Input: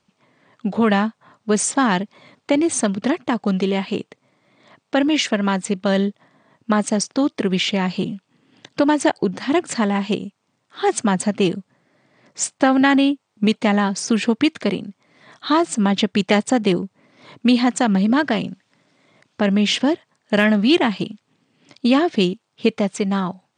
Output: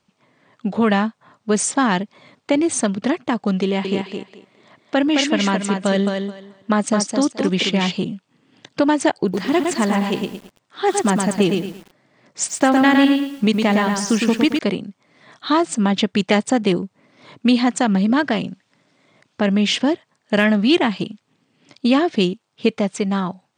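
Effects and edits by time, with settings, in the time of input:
3.63–7.92 s: thinning echo 215 ms, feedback 20%, high-pass 170 Hz, level -4.5 dB
9.13–14.59 s: bit-crushed delay 111 ms, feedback 35%, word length 7-bit, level -4 dB

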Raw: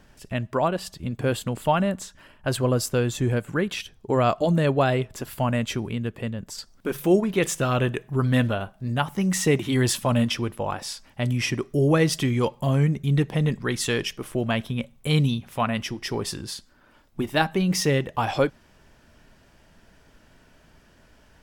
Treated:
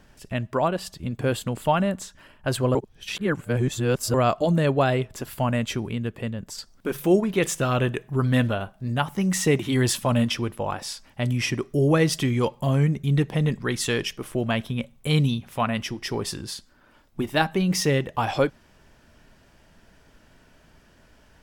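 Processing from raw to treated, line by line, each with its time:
2.75–4.14 s: reverse

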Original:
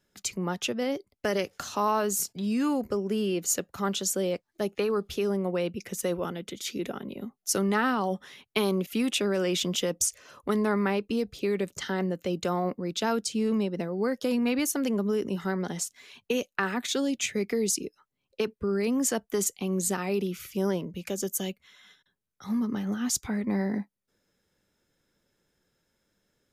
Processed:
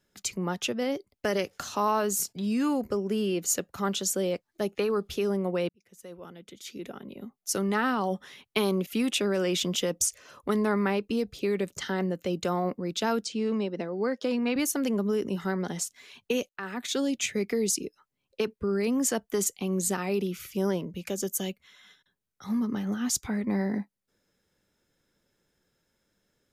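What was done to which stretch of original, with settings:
5.69–8.10 s: fade in linear
13.25–14.56 s: band-pass 210–5700 Hz
16.49–17.00 s: fade in, from -17.5 dB

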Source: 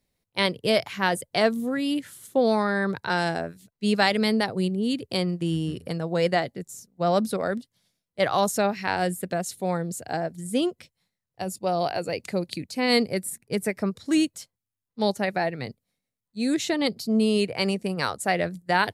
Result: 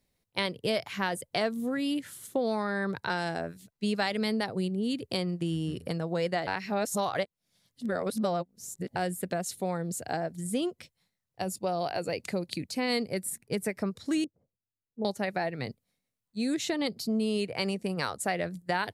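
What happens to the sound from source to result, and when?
6.47–8.96 s: reverse
14.24–15.05 s: four-pole ladder low-pass 650 Hz, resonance 25%
whole clip: compression 2.5:1, threshold -29 dBFS

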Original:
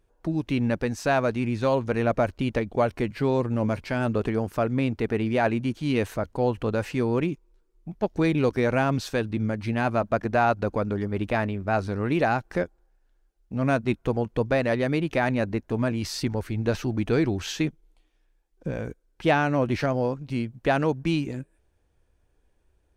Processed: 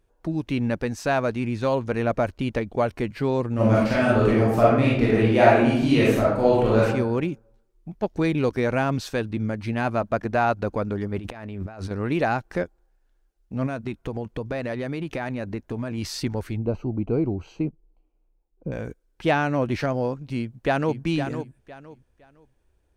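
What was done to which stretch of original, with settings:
3.54–6.83 s: reverb throw, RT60 0.81 s, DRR -7 dB
11.18–11.91 s: compressor with a negative ratio -35 dBFS
13.66–15.98 s: compression 10:1, threshold -24 dBFS
16.57–18.72 s: boxcar filter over 25 samples
20.37–21.00 s: echo throw 510 ms, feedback 25%, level -8.5 dB

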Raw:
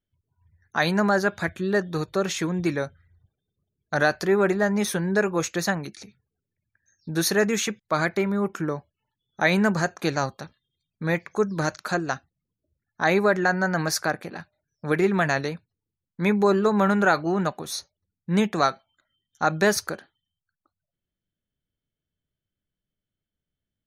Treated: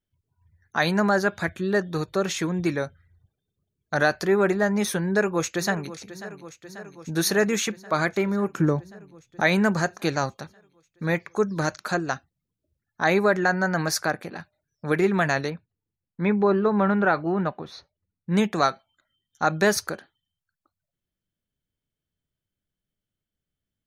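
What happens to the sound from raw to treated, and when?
5.02–5.98 s: echo throw 540 ms, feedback 75%, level -15 dB
8.55–9.41 s: bass shelf 370 Hz +10.5 dB
15.50–18.32 s: distance through air 300 m

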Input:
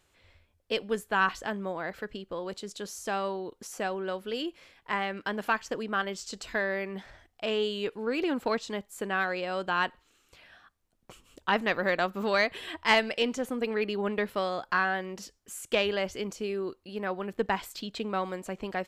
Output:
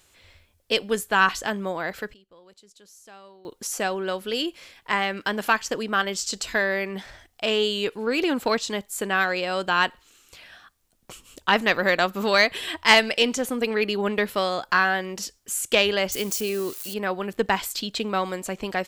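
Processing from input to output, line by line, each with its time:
1.70–3.89 s: dip -22 dB, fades 0.44 s logarithmic
16.12–16.94 s: zero-crossing glitches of -37 dBFS
whole clip: treble shelf 3.2 kHz +9.5 dB; trim +5 dB

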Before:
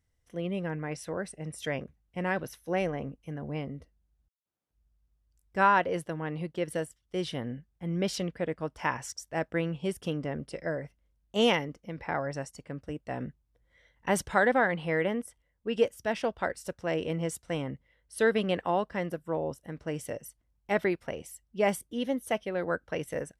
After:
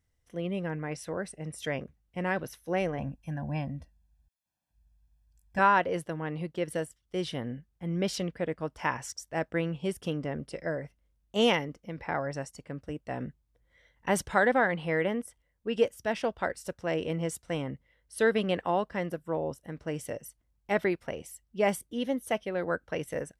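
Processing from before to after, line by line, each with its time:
2.98–5.59 s: comb 1.2 ms, depth 92%

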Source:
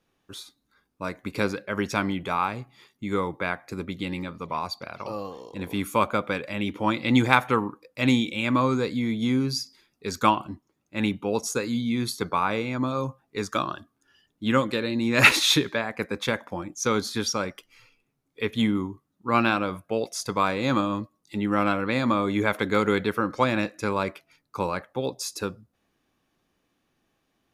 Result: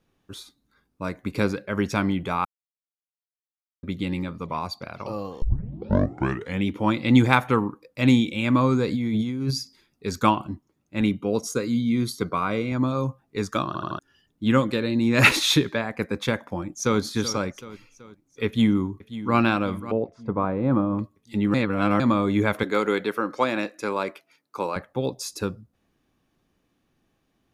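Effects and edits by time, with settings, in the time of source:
2.45–3.83 s: mute
5.42 s: tape start 1.24 s
8.88–9.51 s: compressor with a negative ratio -29 dBFS
11.01–12.72 s: comb of notches 860 Hz
13.67 s: stutter in place 0.08 s, 4 plays
16.41–17.00 s: echo throw 380 ms, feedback 50%, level -13 dB
18.46–19.37 s: echo throw 540 ms, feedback 60%, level -14.5 dB
19.92–20.99 s: low-pass 1 kHz
21.54–22.00 s: reverse
22.63–24.76 s: high-pass 320 Hz
whole clip: bass shelf 320 Hz +7.5 dB; trim -1 dB

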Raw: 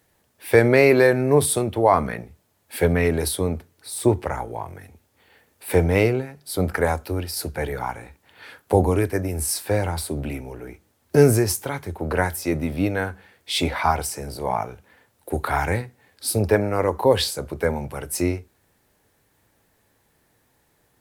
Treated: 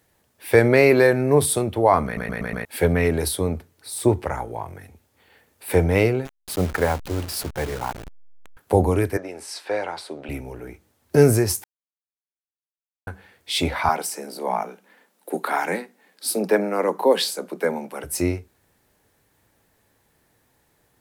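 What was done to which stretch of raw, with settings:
2.05 s: stutter in place 0.12 s, 5 plays
6.25–8.57 s: send-on-delta sampling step -29.5 dBFS
9.17–10.29 s: band-pass 430–4600 Hz
11.64–13.07 s: mute
13.89–18.04 s: steep high-pass 170 Hz 96 dB/octave

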